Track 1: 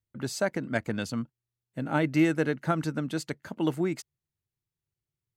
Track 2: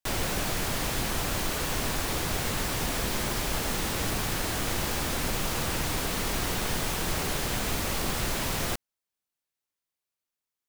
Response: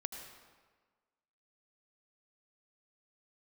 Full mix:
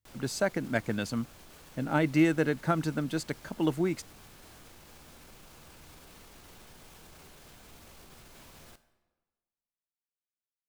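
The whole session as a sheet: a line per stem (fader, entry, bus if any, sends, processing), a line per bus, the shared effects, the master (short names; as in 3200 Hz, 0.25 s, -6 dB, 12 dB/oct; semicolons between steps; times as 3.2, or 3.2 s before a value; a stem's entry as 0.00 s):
-0.5 dB, 0.00 s, no send, dry
-15.0 dB, 0.00 s, send -9 dB, notch 1900 Hz, Q 21; limiter -26.5 dBFS, peak gain reduction 10.5 dB; resonator 77 Hz, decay 0.4 s, harmonics all, mix 50%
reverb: on, RT60 1.5 s, pre-delay 73 ms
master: dry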